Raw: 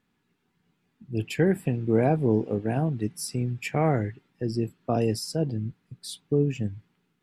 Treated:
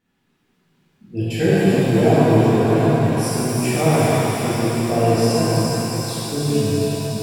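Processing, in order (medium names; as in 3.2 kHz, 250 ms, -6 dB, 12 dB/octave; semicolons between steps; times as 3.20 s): feedback echo behind a high-pass 365 ms, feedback 75%, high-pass 2.5 kHz, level -3.5 dB; pitch-shifted reverb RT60 3.4 s, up +7 st, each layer -8 dB, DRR -11 dB; trim -2.5 dB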